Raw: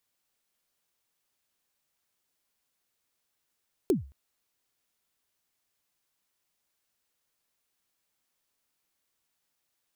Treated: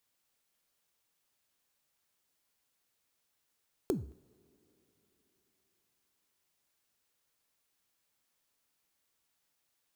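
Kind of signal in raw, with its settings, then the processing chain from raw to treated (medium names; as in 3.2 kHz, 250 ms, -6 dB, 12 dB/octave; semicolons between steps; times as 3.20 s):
kick drum length 0.22 s, from 430 Hz, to 68 Hz, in 139 ms, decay 0.36 s, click on, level -17 dB
compression, threshold -30 dBFS; two-slope reverb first 0.5 s, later 4.2 s, from -20 dB, DRR 14.5 dB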